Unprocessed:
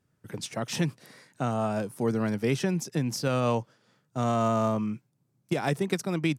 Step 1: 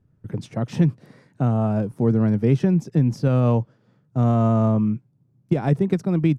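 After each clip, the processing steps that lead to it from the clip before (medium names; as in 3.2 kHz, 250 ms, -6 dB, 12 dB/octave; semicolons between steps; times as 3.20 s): tilt EQ -4 dB/octave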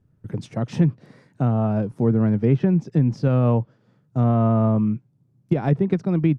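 low-pass that closes with the level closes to 2.6 kHz, closed at -14 dBFS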